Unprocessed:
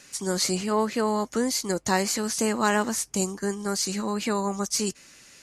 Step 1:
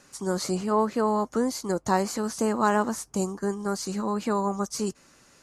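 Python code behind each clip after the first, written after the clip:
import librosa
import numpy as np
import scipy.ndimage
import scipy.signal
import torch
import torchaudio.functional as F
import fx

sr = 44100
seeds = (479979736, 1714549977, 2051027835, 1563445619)

y = fx.high_shelf_res(x, sr, hz=1600.0, db=-7.5, q=1.5)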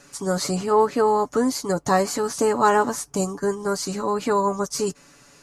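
y = x + 0.6 * np.pad(x, (int(7.0 * sr / 1000.0), 0))[:len(x)]
y = F.gain(torch.from_numpy(y), 4.0).numpy()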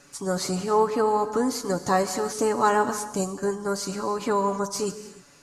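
y = fx.rev_gated(x, sr, seeds[0], gate_ms=340, shape='flat', drr_db=10.5)
y = F.gain(torch.from_numpy(y), -3.0).numpy()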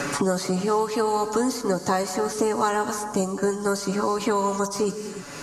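y = fx.band_squash(x, sr, depth_pct=100)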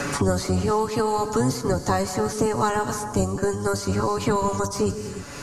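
y = fx.octave_divider(x, sr, octaves=1, level_db=0.0)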